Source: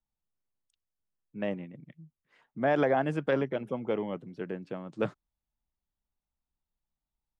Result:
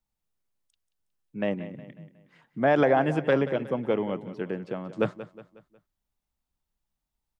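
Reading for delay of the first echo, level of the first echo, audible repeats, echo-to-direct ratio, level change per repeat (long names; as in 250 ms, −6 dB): 182 ms, −14.5 dB, 3, −13.5 dB, −7.0 dB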